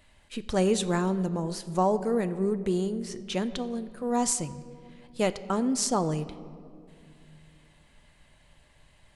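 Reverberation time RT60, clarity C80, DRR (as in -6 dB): 2.5 s, 15.5 dB, 11.0 dB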